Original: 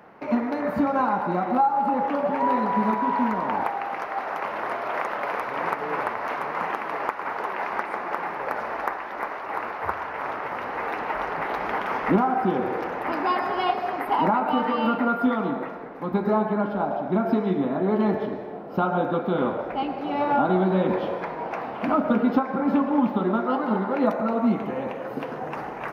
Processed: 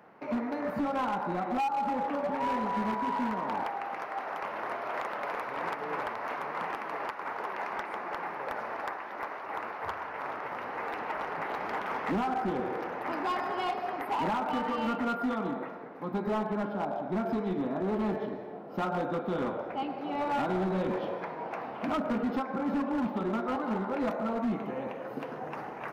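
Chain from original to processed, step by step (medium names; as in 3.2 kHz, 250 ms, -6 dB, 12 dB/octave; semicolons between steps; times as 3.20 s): high-pass 77 Hz 12 dB/octave; overload inside the chain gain 19.5 dB; trim -6.5 dB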